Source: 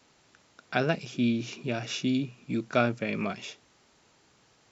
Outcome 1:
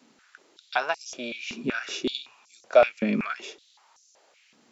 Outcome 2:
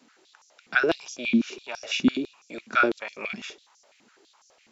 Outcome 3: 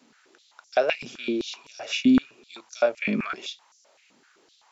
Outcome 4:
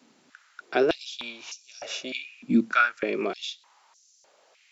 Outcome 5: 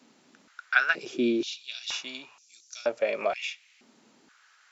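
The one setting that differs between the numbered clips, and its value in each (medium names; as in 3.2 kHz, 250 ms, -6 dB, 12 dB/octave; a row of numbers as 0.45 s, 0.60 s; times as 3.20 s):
step-sequenced high-pass, rate: 5.3 Hz, 12 Hz, 7.8 Hz, 3.3 Hz, 2.1 Hz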